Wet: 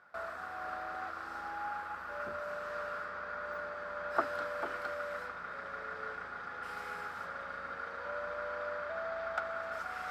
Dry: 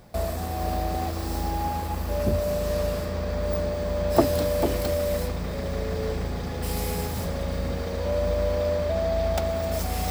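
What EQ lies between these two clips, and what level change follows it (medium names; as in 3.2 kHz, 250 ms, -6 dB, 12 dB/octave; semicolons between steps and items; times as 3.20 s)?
band-pass filter 1.4 kHz, Q 9.5; +10.0 dB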